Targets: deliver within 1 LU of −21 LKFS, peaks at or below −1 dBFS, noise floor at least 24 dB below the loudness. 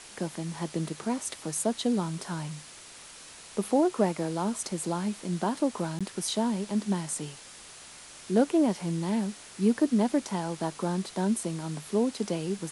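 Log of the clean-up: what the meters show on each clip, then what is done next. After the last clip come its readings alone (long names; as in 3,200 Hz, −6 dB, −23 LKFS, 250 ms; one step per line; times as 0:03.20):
number of dropouts 1; longest dropout 16 ms; background noise floor −48 dBFS; target noise floor −54 dBFS; integrated loudness −29.5 LKFS; sample peak −11.5 dBFS; target loudness −21.0 LKFS
→ repair the gap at 0:05.99, 16 ms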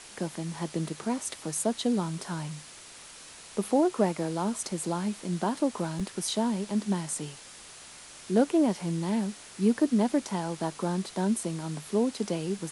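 number of dropouts 0; background noise floor −48 dBFS; target noise floor −54 dBFS
→ noise reduction from a noise print 6 dB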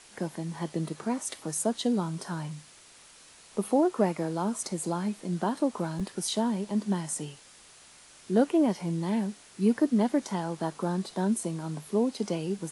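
background noise floor −54 dBFS; integrated loudness −29.5 LKFS; sample peak −11.5 dBFS; target loudness −21.0 LKFS
→ level +8.5 dB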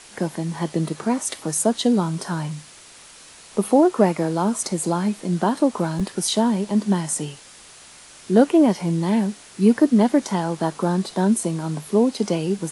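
integrated loudness −21.0 LKFS; sample peak −3.0 dBFS; background noise floor −46 dBFS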